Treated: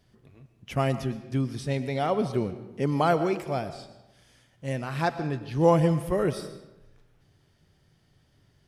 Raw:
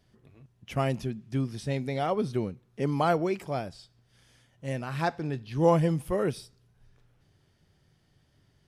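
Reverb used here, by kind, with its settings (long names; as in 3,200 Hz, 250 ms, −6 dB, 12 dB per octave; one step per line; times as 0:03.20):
comb and all-pass reverb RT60 0.98 s, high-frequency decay 0.7×, pre-delay 75 ms, DRR 11.5 dB
level +2 dB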